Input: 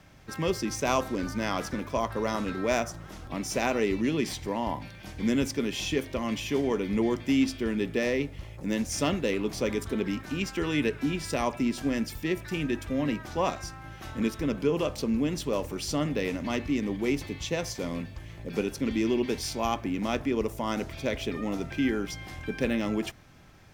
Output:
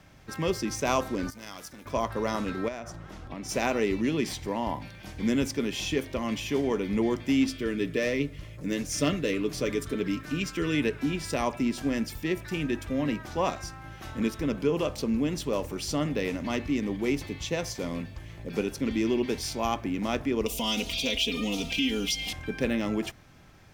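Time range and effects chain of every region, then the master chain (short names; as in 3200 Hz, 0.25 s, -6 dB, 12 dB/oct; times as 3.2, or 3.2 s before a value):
1.3–1.86 pre-emphasis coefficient 0.8 + core saturation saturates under 1400 Hz
2.68–3.49 LPF 4000 Hz 6 dB/oct + compressor, threshold -33 dBFS
7.47–10.75 bell 830 Hz -12.5 dB 0.32 oct + comb 6.7 ms, depth 42%
20.46–22.33 resonant high shelf 2200 Hz +10 dB, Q 3 + comb 4.2 ms, depth 99% + compressor 2:1, threshold -27 dBFS
whole clip: dry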